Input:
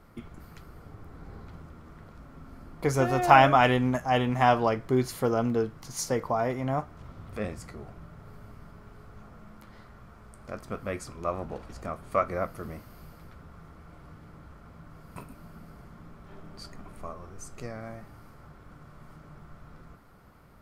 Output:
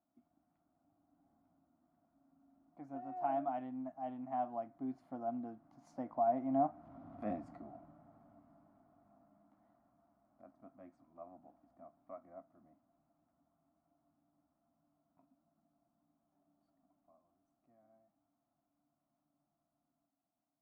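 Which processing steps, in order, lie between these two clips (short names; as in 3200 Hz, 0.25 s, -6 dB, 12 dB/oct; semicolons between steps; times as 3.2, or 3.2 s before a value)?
Doppler pass-by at 7.22, 7 m/s, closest 3.2 m; double band-pass 440 Hz, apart 1.3 oct; gain +6 dB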